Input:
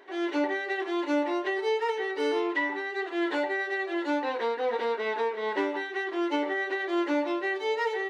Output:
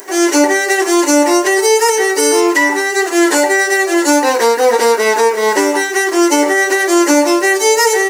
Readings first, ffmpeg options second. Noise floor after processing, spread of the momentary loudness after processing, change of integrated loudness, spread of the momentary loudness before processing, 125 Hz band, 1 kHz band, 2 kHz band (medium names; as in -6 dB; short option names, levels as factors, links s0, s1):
-19 dBFS, 2 LU, +17.5 dB, 3 LU, no reading, +17.0 dB, +17.0 dB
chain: -af "aexciter=amount=12.2:drive=9.3:freq=5600,alimiter=level_in=8.41:limit=0.891:release=50:level=0:latency=1,volume=0.891"